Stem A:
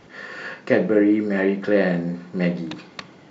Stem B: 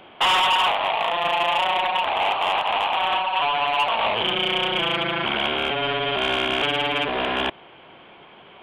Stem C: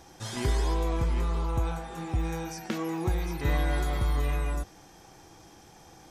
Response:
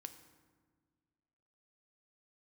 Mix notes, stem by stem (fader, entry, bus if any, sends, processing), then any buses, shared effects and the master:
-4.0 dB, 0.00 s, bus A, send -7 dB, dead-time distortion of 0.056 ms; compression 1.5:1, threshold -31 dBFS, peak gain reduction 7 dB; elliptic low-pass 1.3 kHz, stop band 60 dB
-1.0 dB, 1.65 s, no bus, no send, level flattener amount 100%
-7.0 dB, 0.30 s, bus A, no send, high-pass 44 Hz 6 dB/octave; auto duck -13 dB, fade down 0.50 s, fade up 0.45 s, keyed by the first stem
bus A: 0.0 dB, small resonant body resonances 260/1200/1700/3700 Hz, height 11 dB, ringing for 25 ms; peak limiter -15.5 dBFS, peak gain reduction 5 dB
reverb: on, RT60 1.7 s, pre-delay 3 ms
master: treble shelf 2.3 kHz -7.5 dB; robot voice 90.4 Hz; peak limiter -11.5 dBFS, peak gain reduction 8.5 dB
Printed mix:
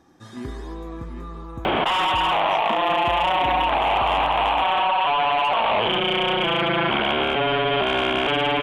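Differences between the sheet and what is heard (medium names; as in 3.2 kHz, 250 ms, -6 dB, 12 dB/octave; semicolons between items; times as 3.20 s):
stem A: muted; stem C: entry 0.30 s -> 0.00 s; reverb: off; master: missing robot voice 90.4 Hz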